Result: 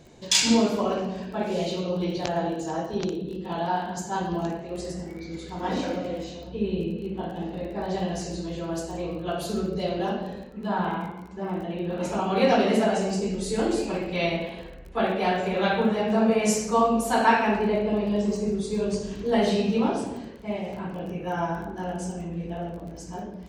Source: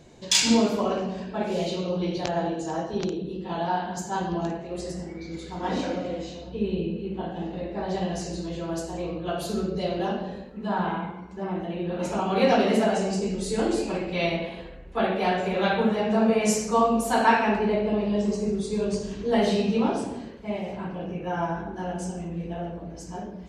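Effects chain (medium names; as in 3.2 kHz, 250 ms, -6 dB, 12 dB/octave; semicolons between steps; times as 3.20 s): crackle 25 per s -38 dBFS; 21.08–21.68 s: treble shelf 7.5 kHz +8.5 dB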